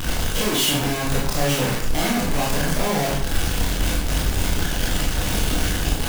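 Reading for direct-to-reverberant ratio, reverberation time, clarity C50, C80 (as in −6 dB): −4.5 dB, 0.65 s, 3.5 dB, 7.0 dB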